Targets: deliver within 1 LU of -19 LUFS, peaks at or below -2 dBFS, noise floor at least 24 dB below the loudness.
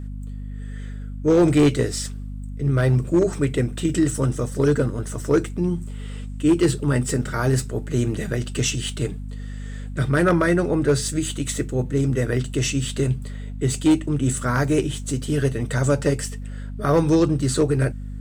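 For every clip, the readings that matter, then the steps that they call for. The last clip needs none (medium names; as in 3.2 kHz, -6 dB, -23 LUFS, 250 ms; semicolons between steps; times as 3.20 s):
clipped samples 0.7%; clipping level -11.0 dBFS; hum 50 Hz; highest harmonic 250 Hz; hum level -29 dBFS; loudness -22.0 LUFS; peak level -11.0 dBFS; loudness target -19.0 LUFS
-> clip repair -11 dBFS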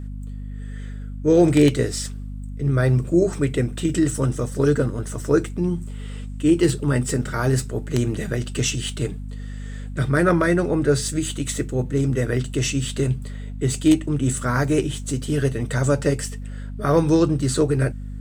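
clipped samples 0.0%; hum 50 Hz; highest harmonic 250 Hz; hum level -29 dBFS
-> de-hum 50 Hz, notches 5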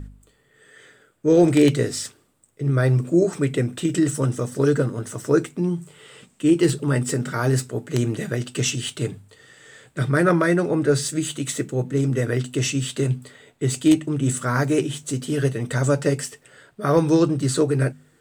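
hum not found; loudness -22.0 LUFS; peak level -3.0 dBFS; loudness target -19.0 LUFS
-> trim +3 dB; peak limiter -2 dBFS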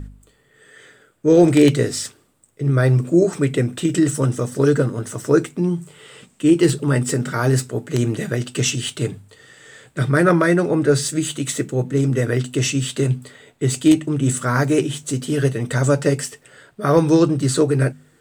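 loudness -19.0 LUFS; peak level -2.0 dBFS; noise floor -58 dBFS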